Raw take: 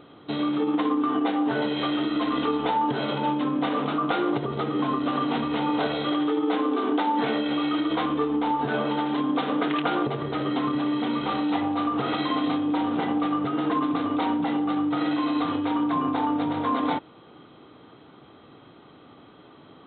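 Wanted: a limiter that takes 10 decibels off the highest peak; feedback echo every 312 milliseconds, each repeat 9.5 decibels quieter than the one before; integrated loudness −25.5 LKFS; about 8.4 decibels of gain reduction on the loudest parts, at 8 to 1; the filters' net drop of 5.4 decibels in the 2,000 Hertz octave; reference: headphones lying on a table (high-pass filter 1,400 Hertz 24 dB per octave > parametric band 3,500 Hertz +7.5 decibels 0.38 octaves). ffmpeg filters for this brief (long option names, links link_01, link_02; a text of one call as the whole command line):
ffmpeg -i in.wav -af "equalizer=frequency=2000:width_type=o:gain=-6.5,acompressor=threshold=-30dB:ratio=8,alimiter=level_in=5dB:limit=-24dB:level=0:latency=1,volume=-5dB,highpass=frequency=1400:width=0.5412,highpass=frequency=1400:width=1.3066,equalizer=frequency=3500:width_type=o:width=0.38:gain=7.5,aecho=1:1:312|624|936|1248:0.335|0.111|0.0365|0.012,volume=20dB" out.wav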